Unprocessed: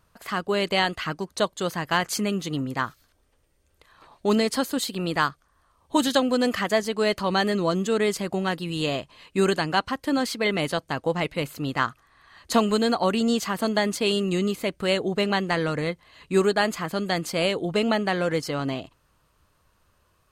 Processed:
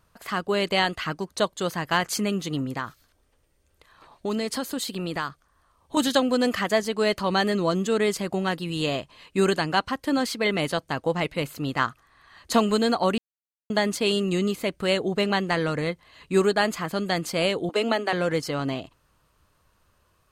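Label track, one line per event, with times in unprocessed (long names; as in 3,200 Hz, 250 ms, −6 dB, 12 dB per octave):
2.680000	5.970000	downward compressor 2.5 to 1, threshold −26 dBFS
13.180000	13.700000	silence
17.690000	18.130000	Butterworth high-pass 230 Hz 72 dB per octave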